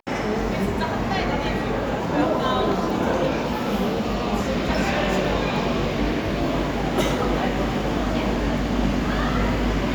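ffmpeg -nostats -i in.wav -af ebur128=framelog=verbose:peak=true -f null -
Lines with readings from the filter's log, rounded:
Integrated loudness:
  I:         -23.2 LUFS
  Threshold: -33.2 LUFS
Loudness range:
  LRA:         0.5 LU
  Threshold: -43.1 LUFS
  LRA low:   -23.3 LUFS
  LRA high:  -22.8 LUFS
True peak:
  Peak:       -6.6 dBFS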